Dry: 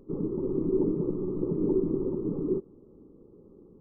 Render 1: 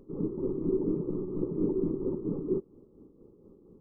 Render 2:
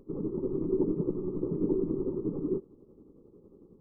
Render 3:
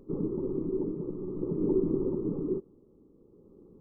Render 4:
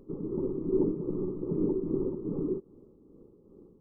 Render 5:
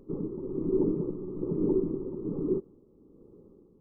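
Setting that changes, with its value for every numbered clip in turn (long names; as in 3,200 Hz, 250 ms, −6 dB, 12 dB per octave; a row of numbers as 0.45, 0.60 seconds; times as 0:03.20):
amplitude tremolo, speed: 4.3, 11, 0.5, 2.5, 1.2 Hertz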